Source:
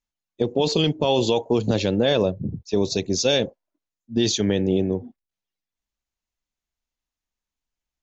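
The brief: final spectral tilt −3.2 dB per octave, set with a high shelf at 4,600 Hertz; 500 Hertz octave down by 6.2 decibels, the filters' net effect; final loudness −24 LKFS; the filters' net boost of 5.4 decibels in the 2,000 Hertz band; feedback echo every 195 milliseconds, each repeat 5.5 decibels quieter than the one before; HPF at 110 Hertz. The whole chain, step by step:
high-pass filter 110 Hz
parametric band 500 Hz −8 dB
parametric band 2,000 Hz +6 dB
high-shelf EQ 4,600 Hz +7.5 dB
repeating echo 195 ms, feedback 53%, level −5.5 dB
level −2.5 dB

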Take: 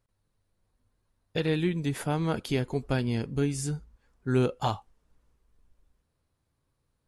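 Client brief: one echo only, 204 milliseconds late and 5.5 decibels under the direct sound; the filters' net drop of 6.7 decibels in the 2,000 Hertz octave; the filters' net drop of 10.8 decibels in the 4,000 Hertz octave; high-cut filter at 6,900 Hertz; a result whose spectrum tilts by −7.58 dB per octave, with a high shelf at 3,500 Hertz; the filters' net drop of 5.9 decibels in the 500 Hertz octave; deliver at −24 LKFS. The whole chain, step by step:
low-pass filter 6,900 Hz
parametric band 500 Hz −7.5 dB
parametric band 2,000 Hz −4.5 dB
high-shelf EQ 3,500 Hz −6 dB
parametric band 4,000 Hz −8 dB
single-tap delay 204 ms −5.5 dB
level +7.5 dB

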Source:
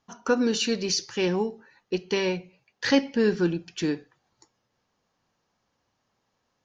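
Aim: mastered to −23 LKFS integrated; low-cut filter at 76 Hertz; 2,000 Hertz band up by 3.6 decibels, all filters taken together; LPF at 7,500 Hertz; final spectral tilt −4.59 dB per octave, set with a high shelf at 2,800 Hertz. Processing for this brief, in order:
high-pass filter 76 Hz
low-pass filter 7,500 Hz
parametric band 2,000 Hz +6.5 dB
high-shelf EQ 2,800 Hz −4.5 dB
level +3 dB

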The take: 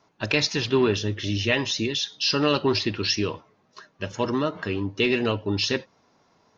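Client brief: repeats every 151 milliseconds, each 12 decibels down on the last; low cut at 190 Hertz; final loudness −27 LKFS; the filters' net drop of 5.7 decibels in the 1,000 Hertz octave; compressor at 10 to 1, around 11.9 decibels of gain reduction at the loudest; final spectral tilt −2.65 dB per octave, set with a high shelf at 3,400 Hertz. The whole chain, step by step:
high-pass filter 190 Hz
parametric band 1,000 Hz −8 dB
high-shelf EQ 3,400 Hz +8.5 dB
downward compressor 10 to 1, threshold −26 dBFS
repeating echo 151 ms, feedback 25%, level −12 dB
level +2.5 dB

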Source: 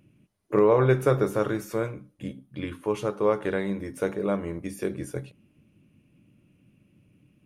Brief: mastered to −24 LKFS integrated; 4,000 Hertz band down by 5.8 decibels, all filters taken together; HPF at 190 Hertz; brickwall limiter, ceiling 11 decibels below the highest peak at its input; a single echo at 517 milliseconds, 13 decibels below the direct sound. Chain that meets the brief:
high-pass filter 190 Hz
parametric band 4,000 Hz −7.5 dB
brickwall limiter −19.5 dBFS
single-tap delay 517 ms −13 dB
level +8 dB

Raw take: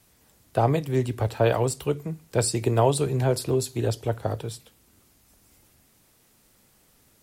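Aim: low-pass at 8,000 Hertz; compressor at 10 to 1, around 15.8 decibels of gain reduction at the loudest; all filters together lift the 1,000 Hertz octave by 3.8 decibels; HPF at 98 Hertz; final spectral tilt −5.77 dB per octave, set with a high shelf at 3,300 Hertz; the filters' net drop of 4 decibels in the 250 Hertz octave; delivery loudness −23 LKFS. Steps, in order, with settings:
high-pass filter 98 Hz
low-pass filter 8,000 Hz
parametric band 250 Hz −6.5 dB
parametric band 1,000 Hz +6 dB
high-shelf EQ 3,300 Hz −3.5 dB
downward compressor 10 to 1, threshold −31 dBFS
level +14.5 dB

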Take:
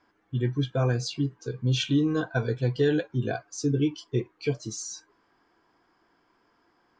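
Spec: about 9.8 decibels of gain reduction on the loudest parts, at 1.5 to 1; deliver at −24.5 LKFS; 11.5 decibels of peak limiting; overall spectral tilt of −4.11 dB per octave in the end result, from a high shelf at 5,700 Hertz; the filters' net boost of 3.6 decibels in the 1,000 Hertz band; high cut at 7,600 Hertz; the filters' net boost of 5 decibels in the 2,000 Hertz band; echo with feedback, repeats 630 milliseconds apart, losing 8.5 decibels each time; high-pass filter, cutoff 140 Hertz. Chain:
high-pass filter 140 Hz
low-pass filter 7,600 Hz
parametric band 1,000 Hz +4 dB
parametric band 2,000 Hz +4.5 dB
high-shelf EQ 5,700 Hz +7.5 dB
downward compressor 1.5 to 1, threshold −48 dBFS
brickwall limiter −33 dBFS
repeating echo 630 ms, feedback 38%, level −8.5 dB
level +18 dB

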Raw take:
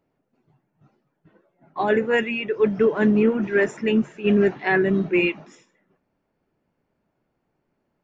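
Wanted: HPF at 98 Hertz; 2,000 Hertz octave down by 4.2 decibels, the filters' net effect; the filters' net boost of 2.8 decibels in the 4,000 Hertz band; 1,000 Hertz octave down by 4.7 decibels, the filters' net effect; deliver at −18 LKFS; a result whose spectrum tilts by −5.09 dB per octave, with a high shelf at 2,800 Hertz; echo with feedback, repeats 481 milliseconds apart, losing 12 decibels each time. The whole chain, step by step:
high-pass filter 98 Hz
parametric band 1,000 Hz −6 dB
parametric band 2,000 Hz −8 dB
high-shelf EQ 2,800 Hz +4.5 dB
parametric band 4,000 Hz +8 dB
repeating echo 481 ms, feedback 25%, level −12 dB
level +4 dB

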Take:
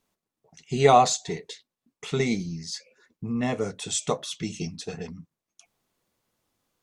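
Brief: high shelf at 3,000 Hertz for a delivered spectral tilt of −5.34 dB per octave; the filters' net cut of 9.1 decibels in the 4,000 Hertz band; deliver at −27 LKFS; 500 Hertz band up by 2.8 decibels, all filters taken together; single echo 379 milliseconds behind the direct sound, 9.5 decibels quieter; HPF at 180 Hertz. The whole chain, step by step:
high-pass filter 180 Hz
parametric band 500 Hz +4 dB
high-shelf EQ 3,000 Hz −8 dB
parametric band 4,000 Hz −5 dB
single-tap delay 379 ms −9.5 dB
level −2 dB

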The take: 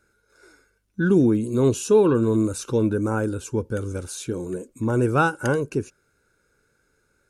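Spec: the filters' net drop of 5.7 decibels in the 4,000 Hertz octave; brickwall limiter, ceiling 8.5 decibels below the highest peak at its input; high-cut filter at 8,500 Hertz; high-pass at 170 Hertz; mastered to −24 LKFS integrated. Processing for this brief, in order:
high-pass filter 170 Hz
low-pass filter 8,500 Hz
parametric band 4,000 Hz −7.5 dB
level +2 dB
brickwall limiter −12.5 dBFS

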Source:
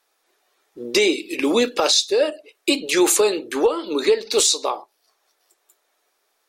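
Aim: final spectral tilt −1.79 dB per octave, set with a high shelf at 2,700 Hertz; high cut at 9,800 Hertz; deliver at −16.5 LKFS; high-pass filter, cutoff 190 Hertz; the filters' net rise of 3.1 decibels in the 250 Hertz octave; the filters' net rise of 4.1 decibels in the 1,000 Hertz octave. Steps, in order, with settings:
high-pass filter 190 Hz
low-pass filter 9,800 Hz
parametric band 250 Hz +5 dB
parametric band 1,000 Hz +5.5 dB
high-shelf EQ 2,700 Hz −4 dB
level +2 dB

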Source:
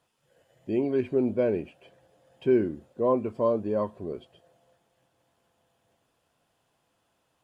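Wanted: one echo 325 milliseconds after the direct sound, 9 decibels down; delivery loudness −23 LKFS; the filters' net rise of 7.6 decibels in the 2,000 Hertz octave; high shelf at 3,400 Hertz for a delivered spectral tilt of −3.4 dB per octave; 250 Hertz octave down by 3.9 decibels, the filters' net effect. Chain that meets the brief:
parametric band 250 Hz −5.5 dB
parametric band 2,000 Hz +8 dB
high-shelf EQ 3,400 Hz +7.5 dB
single-tap delay 325 ms −9 dB
level +6 dB

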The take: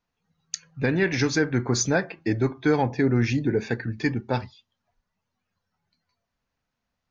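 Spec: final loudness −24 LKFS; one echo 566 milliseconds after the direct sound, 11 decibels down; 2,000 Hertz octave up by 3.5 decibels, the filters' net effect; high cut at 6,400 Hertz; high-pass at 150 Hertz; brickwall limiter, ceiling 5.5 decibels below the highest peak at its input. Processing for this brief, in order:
high-pass filter 150 Hz
low-pass filter 6,400 Hz
parametric band 2,000 Hz +4.5 dB
brickwall limiter −13 dBFS
single-tap delay 566 ms −11 dB
level +1.5 dB

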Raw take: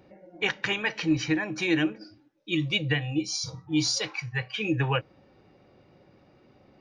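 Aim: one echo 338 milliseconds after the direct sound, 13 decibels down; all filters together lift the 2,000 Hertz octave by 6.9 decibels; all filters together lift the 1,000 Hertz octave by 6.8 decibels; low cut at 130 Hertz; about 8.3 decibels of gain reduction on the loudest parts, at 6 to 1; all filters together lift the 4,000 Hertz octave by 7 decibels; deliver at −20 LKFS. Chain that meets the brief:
high-pass filter 130 Hz
parametric band 1,000 Hz +7 dB
parametric band 2,000 Hz +4.5 dB
parametric band 4,000 Hz +7.5 dB
downward compressor 6 to 1, threshold −25 dBFS
single-tap delay 338 ms −13 dB
level +8.5 dB

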